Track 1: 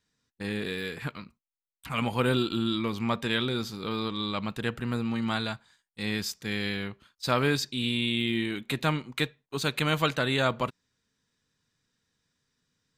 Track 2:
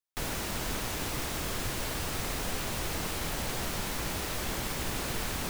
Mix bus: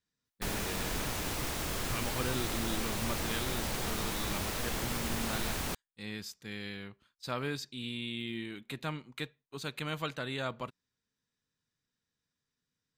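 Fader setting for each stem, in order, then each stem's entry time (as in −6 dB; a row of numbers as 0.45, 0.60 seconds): −10.5, −1.5 decibels; 0.00, 0.25 seconds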